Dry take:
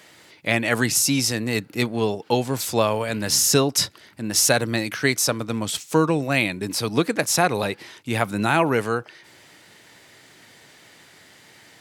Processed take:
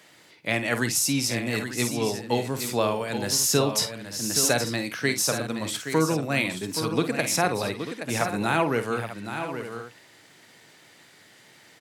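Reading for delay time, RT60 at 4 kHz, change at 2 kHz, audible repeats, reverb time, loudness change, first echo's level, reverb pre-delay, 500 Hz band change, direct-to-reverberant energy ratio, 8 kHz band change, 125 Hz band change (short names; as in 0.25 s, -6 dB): 50 ms, none, -3.5 dB, 3, none, -4.0 dB, -10.5 dB, none, -3.5 dB, none, -3.5 dB, -3.5 dB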